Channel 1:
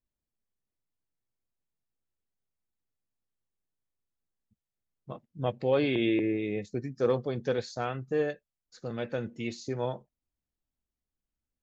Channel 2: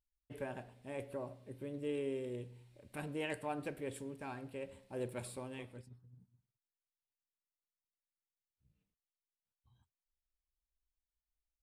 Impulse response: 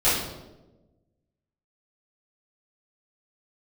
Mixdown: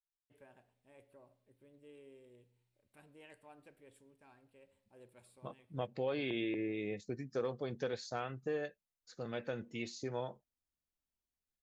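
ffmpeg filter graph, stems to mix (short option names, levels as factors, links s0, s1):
-filter_complex "[0:a]adelay=350,volume=0.668[s0];[1:a]volume=0.15[s1];[s0][s1]amix=inputs=2:normalize=0,lowshelf=f=400:g=-5,acompressor=threshold=0.02:ratio=3"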